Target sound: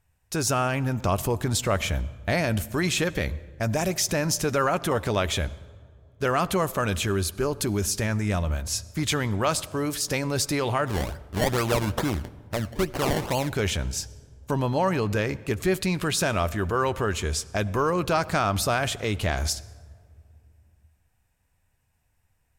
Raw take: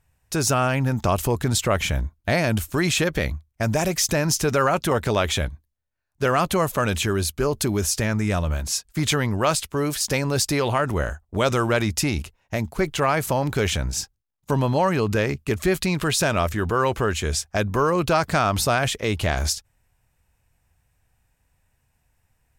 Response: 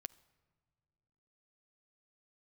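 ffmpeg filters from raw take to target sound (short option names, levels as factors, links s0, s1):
-filter_complex "[0:a]asplit=3[s0][s1][s2];[s0]afade=t=out:st=10.86:d=0.02[s3];[s1]acrusher=samples=24:mix=1:aa=0.000001:lfo=1:lforange=24:lforate=2.3,afade=t=in:st=10.86:d=0.02,afade=t=out:st=13.48:d=0.02[s4];[s2]afade=t=in:st=13.48:d=0.02[s5];[s3][s4][s5]amix=inputs=3:normalize=0[s6];[1:a]atrim=start_sample=2205,asetrate=31311,aresample=44100[s7];[s6][s7]afir=irnorm=-1:irlink=0"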